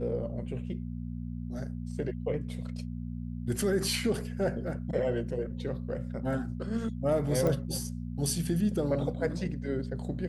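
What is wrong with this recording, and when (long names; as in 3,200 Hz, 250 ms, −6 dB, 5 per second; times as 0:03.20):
mains hum 60 Hz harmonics 4 −37 dBFS
0:07.47: click −18 dBFS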